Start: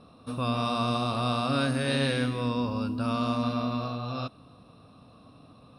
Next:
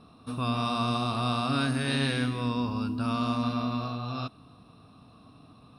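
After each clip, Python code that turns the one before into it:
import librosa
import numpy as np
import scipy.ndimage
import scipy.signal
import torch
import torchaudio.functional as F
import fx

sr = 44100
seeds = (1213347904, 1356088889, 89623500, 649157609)

y = fx.peak_eq(x, sr, hz=540.0, db=-10.5, octaves=0.26)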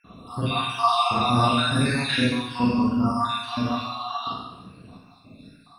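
y = fx.spec_dropout(x, sr, seeds[0], share_pct=77)
y = fx.rev_schroeder(y, sr, rt60_s=0.87, comb_ms=33, drr_db=-8.5)
y = y * librosa.db_to_amplitude(4.0)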